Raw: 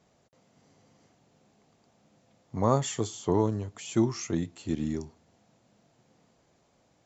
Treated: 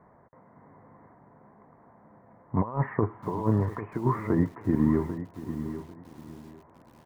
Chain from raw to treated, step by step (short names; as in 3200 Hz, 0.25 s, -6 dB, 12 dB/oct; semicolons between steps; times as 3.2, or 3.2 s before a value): steep low-pass 2000 Hz 72 dB/oct; bell 1000 Hz +12 dB 0.29 oct; negative-ratio compressor -28 dBFS, ratio -0.5; feedback echo 0.795 s, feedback 22%, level -12 dB; lo-fi delay 0.69 s, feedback 35%, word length 8-bit, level -15 dB; gain +4.5 dB